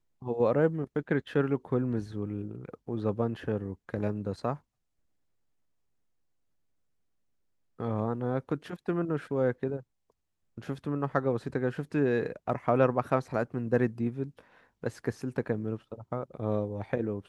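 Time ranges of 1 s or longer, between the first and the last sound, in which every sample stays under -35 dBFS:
4.55–7.80 s

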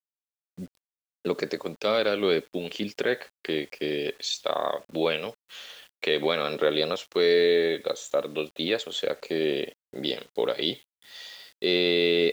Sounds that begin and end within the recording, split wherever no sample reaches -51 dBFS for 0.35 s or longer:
0.58–0.77 s

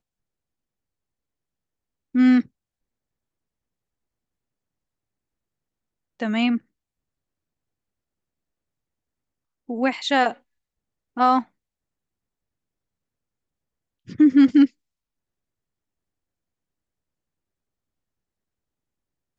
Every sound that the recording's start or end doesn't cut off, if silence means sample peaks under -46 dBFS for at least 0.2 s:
2.15–2.46 s
6.20–6.59 s
9.69–10.37 s
11.17–11.43 s
14.08–14.68 s

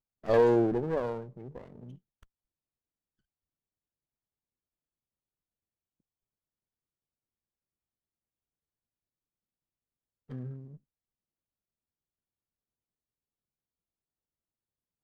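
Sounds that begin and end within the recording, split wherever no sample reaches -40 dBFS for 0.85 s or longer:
10.31–10.66 s

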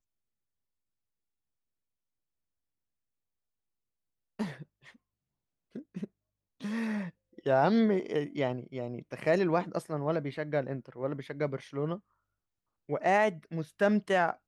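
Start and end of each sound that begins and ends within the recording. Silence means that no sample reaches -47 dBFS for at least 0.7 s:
4.39–4.91 s
5.75–11.99 s

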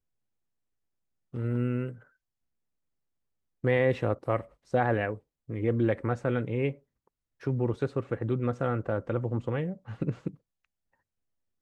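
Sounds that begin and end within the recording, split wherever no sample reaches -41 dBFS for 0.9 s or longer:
1.34–1.95 s
3.64–10.34 s

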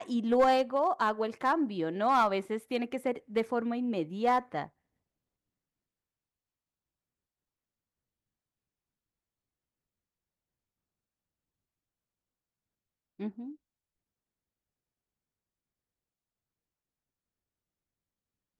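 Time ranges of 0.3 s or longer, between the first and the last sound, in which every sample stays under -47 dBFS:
4.67–13.20 s

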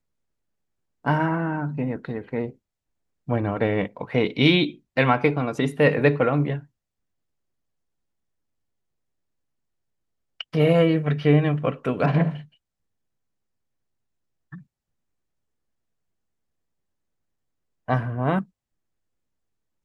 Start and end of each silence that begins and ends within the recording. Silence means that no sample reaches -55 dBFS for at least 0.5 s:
2.56–3.27 s
6.67–10.40 s
12.56–14.52 s
14.63–17.88 s

